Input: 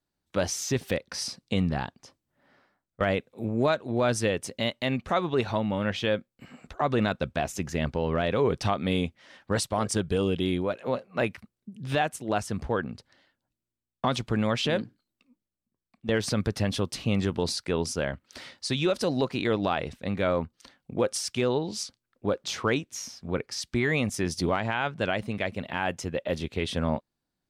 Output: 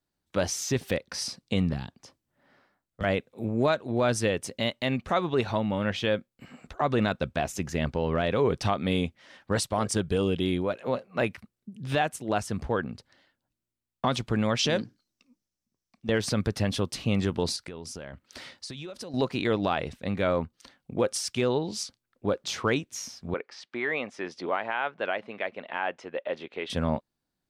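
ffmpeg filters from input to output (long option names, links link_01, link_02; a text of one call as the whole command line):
ffmpeg -i in.wav -filter_complex "[0:a]asettb=1/sr,asplit=3[link_01][link_02][link_03];[link_01]atrim=end=1.734[link_04];[link_02]atrim=start=1.73:end=3.04,asetpts=PTS-STARTPTS,afade=type=in:duration=0.004:curve=qsin,afade=type=out:start_time=1.306:duration=0.004:curve=qsin,acrossover=split=270|3000[link_05][link_06][link_07];[link_06]acompressor=threshold=-41dB:ratio=6:attack=3.2:release=140:knee=2.83:detection=peak[link_08];[link_05][link_08][link_07]amix=inputs=3:normalize=0[link_09];[link_03]atrim=start=3.036[link_10];[link_04][link_09]acrossfade=duration=0.004:curve1=hsin:curve2=qsin[link_11];[link_11][link_10]acrossfade=duration=0.004:curve1=qsin:curve2=hsin,asettb=1/sr,asplit=3[link_12][link_13][link_14];[link_12]atrim=end=14.594[link_15];[link_13]atrim=start=14.59:end=16.08,asetpts=PTS-STARTPTS,afade=type=in:duration=0.004:curve=qsin,afade=type=out:start_time=1.486:duration=0.004:curve=qsin,equalizer=frequency=5700:width_type=o:width=0.58:gain=12[link_16];[link_14]atrim=start=16.076[link_17];[link_15][link_16]acrossfade=duration=0.004:curve1=hsin:curve2=qsin[link_18];[link_18][link_17]acrossfade=duration=0.004:curve1=qsin:curve2=hsin,asettb=1/sr,asplit=3[link_19][link_20][link_21];[link_19]atrim=end=17.564[link_22];[link_20]atrim=start=17.56:end=19.14,asetpts=PTS-STARTPTS,afade=type=in:duration=0.004:curve=qsin,afade=type=out:start_time=1.576:duration=0.004:curve=qsin,acompressor=threshold=-35dB:ratio=16:attack=3.2:release=140:knee=1:detection=peak[link_23];[link_21]atrim=start=19.136[link_24];[link_22][link_23]acrossfade=duration=0.004:curve1=hsin:curve2=qsin[link_25];[link_25][link_24]acrossfade=duration=0.004:curve1=qsin:curve2=hsin,asettb=1/sr,asplit=3[link_26][link_27][link_28];[link_26]atrim=end=23.344[link_29];[link_27]atrim=start=23.34:end=26.7,asetpts=PTS-STARTPTS,afade=type=in:duration=0.004:curve=qsin,afade=type=out:start_time=3.356:duration=0.004:curve=qsin,highpass=440,lowpass=2600[link_30];[link_28]atrim=start=26.696[link_31];[link_29][link_30]acrossfade=duration=0.004:curve1=hsin:curve2=qsin[link_32];[link_32][link_31]acrossfade=duration=0.004:curve1=qsin:curve2=hsin" out.wav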